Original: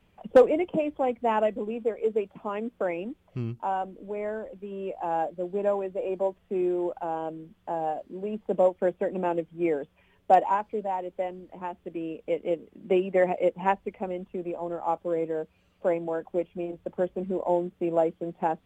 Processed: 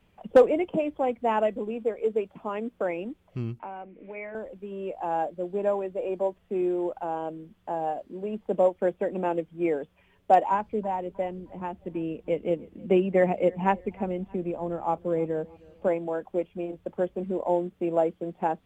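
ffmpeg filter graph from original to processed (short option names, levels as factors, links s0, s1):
-filter_complex "[0:a]asettb=1/sr,asplit=3[s0][s1][s2];[s0]atrim=end=3.594[s3];[s1]atrim=start=3.59:end=4.35,asetpts=PTS-STARTPTS,afade=t=in:d=0.004:c=qsin,afade=t=out:st=0.756:d=0.004:c=qsin,bandreject=f=60:t=h:w=6,bandreject=f=120:t=h:w=6,bandreject=f=180:t=h:w=6,bandreject=f=240:t=h:w=6,bandreject=f=300:t=h:w=6,bandreject=f=360:t=h:w=6,bandreject=f=420:t=h:w=6,acrossover=split=200|450[s4][s5][s6];[s4]acompressor=threshold=0.00126:ratio=4[s7];[s5]acompressor=threshold=0.00501:ratio=4[s8];[s6]acompressor=threshold=0.00708:ratio=4[s9];[s7][s8][s9]amix=inputs=3:normalize=0,lowpass=f=2300:t=q:w=6.1[s10];[s2]atrim=start=4.346[s11];[s3][s10]acrossfade=d=0.004:c1=hsin:c2=qsin[s12];[s12][s11]acrossfade=d=0.004:c1=qsin:c2=hsin,asettb=1/sr,asplit=3[s13][s14][s15];[s13]atrim=end=10.524[s16];[s14]atrim=start=10.52:end=15.88,asetpts=PTS-STARTPTS,afade=t=in:d=0.004:c=qsin,afade=t=out:st=5.356:d=0.004:c=qsin,bass=f=250:g=9,treble=f=4000:g=-1,aecho=1:1:313|626|939:0.0631|0.0252|0.0101,atrim=end_sample=236376[s17];[s15]atrim=start=15.876[s18];[s16][s17]acrossfade=d=0.004:c1=hsin:c2=qsin[s19];[s19][s18]acrossfade=d=0.004:c1=qsin:c2=hsin"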